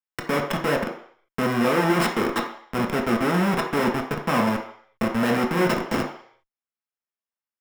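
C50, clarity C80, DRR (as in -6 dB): 7.0 dB, 10.5 dB, 0.5 dB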